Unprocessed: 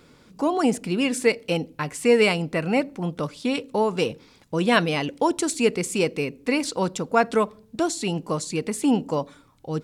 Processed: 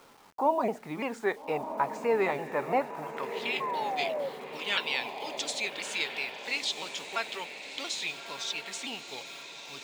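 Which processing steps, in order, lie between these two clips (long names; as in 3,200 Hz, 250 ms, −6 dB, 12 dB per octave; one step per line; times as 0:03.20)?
pitch shifter swept by a sawtooth −3.5 semitones, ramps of 341 ms
in parallel at −3 dB: downward compressor, threshold −30 dBFS, peak gain reduction 15 dB
on the sum: band-pass filter sweep 870 Hz → 3,400 Hz, 0:02.73–0:03.63
bit reduction 10 bits
sound drawn into the spectrogram fall, 0:03.60–0:04.29, 530–1,100 Hz −36 dBFS
on a send: feedback delay with all-pass diffusion 1,283 ms, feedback 52%, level −9 dB
on the sum: level +3 dB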